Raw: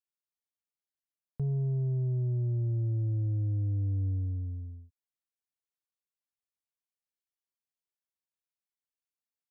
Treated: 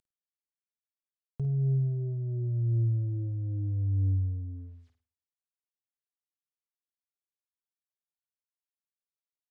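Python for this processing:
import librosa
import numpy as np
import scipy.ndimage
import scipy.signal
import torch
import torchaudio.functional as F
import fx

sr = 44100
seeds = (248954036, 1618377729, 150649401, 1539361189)

y = fx.cvsd(x, sr, bps=64000)
y = fx.env_lowpass_down(y, sr, base_hz=510.0, full_db=-32.5)
y = fx.room_flutter(y, sr, wall_m=8.9, rt60_s=0.4)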